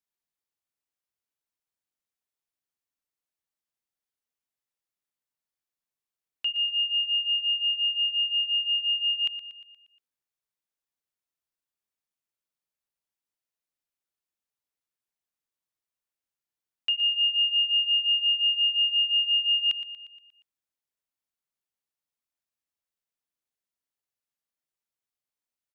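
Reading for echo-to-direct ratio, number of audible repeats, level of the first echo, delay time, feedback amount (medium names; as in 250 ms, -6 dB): -11.5 dB, 5, -13.0 dB, 118 ms, 55%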